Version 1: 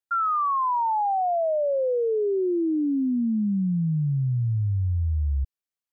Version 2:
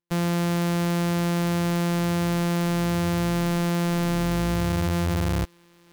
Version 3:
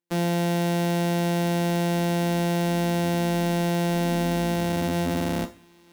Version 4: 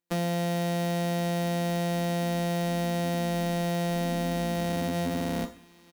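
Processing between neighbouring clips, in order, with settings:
sample sorter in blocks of 256 samples; reverse; upward compressor, threshold -28 dBFS; reverse
resonant low shelf 170 Hz -9 dB, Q 3; on a send at -6 dB: reverb, pre-delay 3 ms; on the sum: gain -1 dB
comb 4.2 ms, depth 43%; compressor, threshold -26 dBFS, peak gain reduction 5.5 dB

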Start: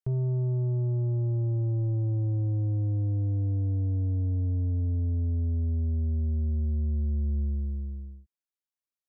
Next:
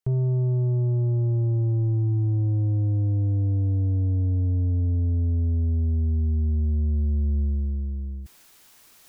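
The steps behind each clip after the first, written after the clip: notch 550 Hz, Q 12; reverse; upward compressor, threshold -31 dBFS; reverse; gain +4.5 dB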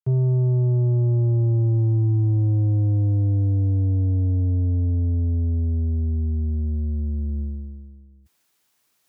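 HPF 72 Hz 24 dB/oct; upward expander 2.5:1, over -34 dBFS; gain +4 dB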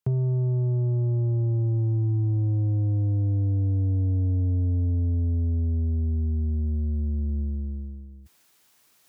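compressor 2.5:1, threshold -34 dBFS, peak gain reduction 11 dB; gain +6.5 dB

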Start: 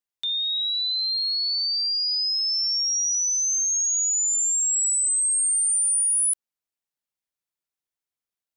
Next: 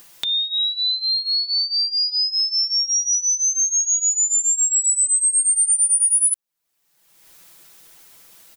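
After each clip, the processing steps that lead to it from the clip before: high shelf 9000 Hz +4.5 dB; comb 6 ms, depth 77%; upward compressor, threshold -19 dBFS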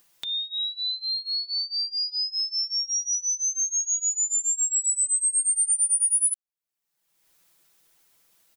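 upward expander 1.5:1, over -35 dBFS; gain -4.5 dB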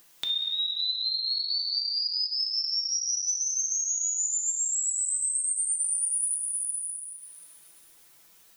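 plate-style reverb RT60 2.4 s, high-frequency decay 0.9×, DRR 0 dB; compressor 5:1, threshold -30 dBFS, peak gain reduction 12.5 dB; gain +3.5 dB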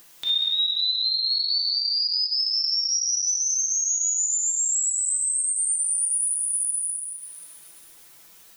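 limiter -23 dBFS, peak gain reduction 9 dB; gain +6.5 dB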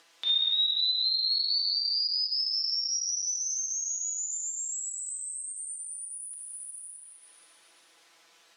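BPF 390–4800 Hz; gain -1.5 dB

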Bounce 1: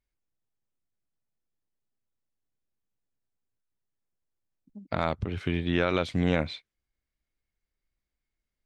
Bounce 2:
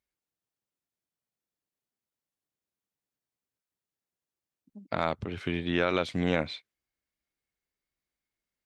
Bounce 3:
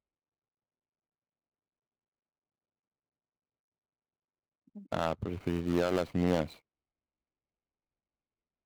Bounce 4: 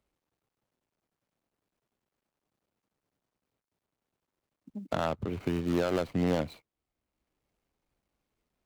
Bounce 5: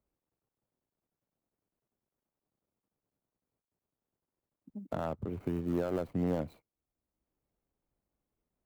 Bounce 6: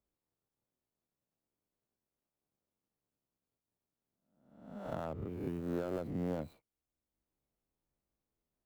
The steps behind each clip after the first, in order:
HPF 190 Hz 6 dB/oct
median filter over 25 samples
three-band squash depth 40%; gain +1 dB
bell 3900 Hz -12 dB 2.8 oct; gain -3 dB
spectral swells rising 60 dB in 0.77 s; gain -6 dB

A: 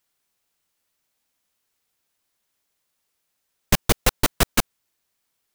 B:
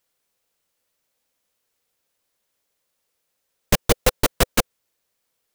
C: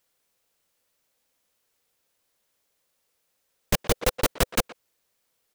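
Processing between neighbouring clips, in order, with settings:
bell 510 Hz +8 dB 0.44 oct
speakerphone echo 0.12 s, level -15 dB; level quantiser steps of 11 dB; gain +2.5 dB

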